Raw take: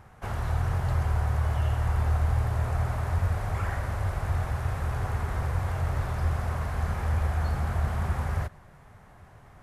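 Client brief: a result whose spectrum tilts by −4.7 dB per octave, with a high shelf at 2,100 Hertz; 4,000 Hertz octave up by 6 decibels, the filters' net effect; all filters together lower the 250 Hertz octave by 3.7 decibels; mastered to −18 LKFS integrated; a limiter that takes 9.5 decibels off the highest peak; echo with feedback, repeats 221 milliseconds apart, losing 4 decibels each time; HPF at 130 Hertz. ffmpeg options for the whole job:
ffmpeg -i in.wav -af "highpass=130,equalizer=frequency=250:width_type=o:gain=-4.5,highshelf=frequency=2100:gain=4.5,equalizer=frequency=4000:width_type=o:gain=3.5,alimiter=level_in=6dB:limit=-24dB:level=0:latency=1,volume=-6dB,aecho=1:1:221|442|663|884|1105|1326|1547|1768|1989:0.631|0.398|0.25|0.158|0.0994|0.0626|0.0394|0.0249|0.0157,volume=19dB" out.wav

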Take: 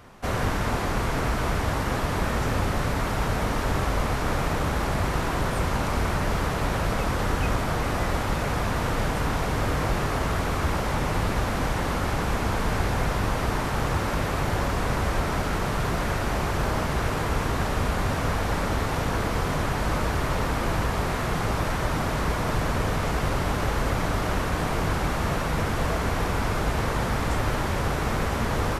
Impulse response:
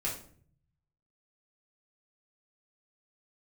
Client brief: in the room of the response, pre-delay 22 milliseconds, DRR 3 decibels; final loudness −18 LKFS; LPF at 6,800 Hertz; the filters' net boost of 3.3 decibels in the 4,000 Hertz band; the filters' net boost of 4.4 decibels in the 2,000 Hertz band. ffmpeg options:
-filter_complex "[0:a]lowpass=6800,equalizer=frequency=2000:width_type=o:gain=5,equalizer=frequency=4000:width_type=o:gain=3,asplit=2[link_01][link_02];[1:a]atrim=start_sample=2205,adelay=22[link_03];[link_02][link_03]afir=irnorm=-1:irlink=0,volume=-7dB[link_04];[link_01][link_04]amix=inputs=2:normalize=0,volume=5dB"

